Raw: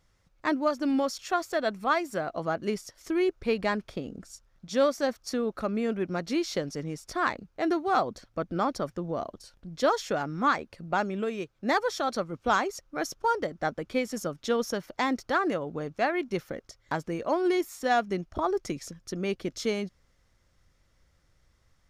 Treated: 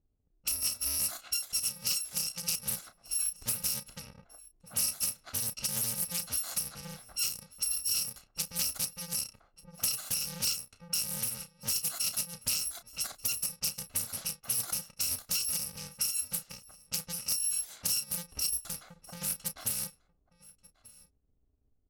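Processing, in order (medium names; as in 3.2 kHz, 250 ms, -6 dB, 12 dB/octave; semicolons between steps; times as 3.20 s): bit-reversed sample order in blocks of 128 samples; level-controlled noise filter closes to 410 Hz, open at -26.5 dBFS; tone controls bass -2 dB, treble +7 dB; compression 6:1, threshold -22 dBFS, peak gain reduction 8.5 dB; doubling 32 ms -10 dB; delay 1187 ms -22.5 dB; loudspeaker Doppler distortion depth 0.45 ms; trim -4.5 dB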